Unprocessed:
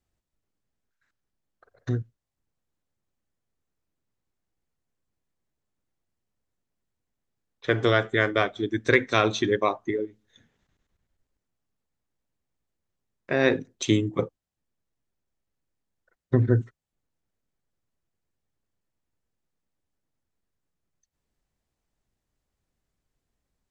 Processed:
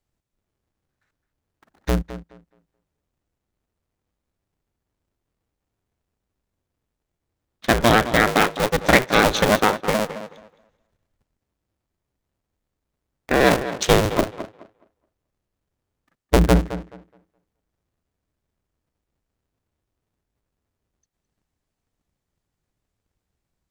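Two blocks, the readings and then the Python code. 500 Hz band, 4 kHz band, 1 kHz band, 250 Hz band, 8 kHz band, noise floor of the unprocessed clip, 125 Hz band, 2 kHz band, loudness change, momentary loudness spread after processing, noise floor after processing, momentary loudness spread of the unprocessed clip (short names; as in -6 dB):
+5.0 dB, +8.0 dB, +10.0 dB, +5.0 dB, +12.0 dB, -84 dBFS, +2.5 dB, +6.0 dB, +6.0 dB, 16 LU, -81 dBFS, 9 LU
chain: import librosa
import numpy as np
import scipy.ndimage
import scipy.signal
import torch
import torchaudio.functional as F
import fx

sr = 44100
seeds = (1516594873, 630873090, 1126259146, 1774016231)

y = fx.cycle_switch(x, sr, every=2, mode='inverted')
y = fx.leveller(y, sr, passes=1)
y = fx.echo_tape(y, sr, ms=213, feedback_pct=23, wet_db=-11, lp_hz=3300.0, drive_db=5.0, wow_cents=28)
y = y * librosa.db_to_amplitude(2.5)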